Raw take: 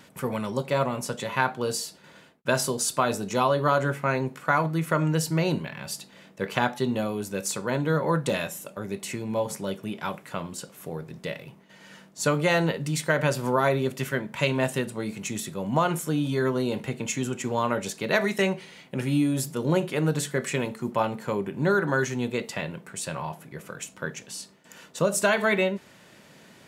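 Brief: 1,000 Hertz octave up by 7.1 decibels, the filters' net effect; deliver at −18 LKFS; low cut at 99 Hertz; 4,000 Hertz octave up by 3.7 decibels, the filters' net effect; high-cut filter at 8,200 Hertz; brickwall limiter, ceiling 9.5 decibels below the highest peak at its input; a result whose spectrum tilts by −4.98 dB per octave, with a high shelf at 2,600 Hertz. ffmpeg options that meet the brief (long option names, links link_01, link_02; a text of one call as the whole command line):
ffmpeg -i in.wav -af "highpass=99,lowpass=8200,equalizer=frequency=1000:width_type=o:gain=9,highshelf=frequency=2600:gain=-5.5,equalizer=frequency=4000:width_type=o:gain=9,volume=8.5dB,alimiter=limit=-3dB:level=0:latency=1" out.wav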